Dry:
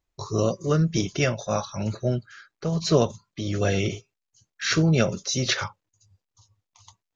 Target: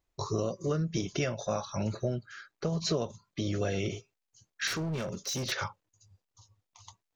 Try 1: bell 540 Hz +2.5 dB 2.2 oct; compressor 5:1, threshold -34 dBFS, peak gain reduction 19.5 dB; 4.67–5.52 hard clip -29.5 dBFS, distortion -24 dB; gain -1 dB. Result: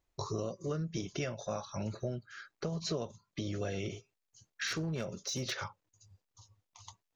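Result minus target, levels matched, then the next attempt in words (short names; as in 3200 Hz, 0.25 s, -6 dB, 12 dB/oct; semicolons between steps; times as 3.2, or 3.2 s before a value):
compressor: peak gain reduction +5.5 dB
bell 540 Hz +2.5 dB 2.2 oct; compressor 5:1, threshold -27 dBFS, peak gain reduction 14 dB; 4.67–5.52 hard clip -29.5 dBFS, distortion -14 dB; gain -1 dB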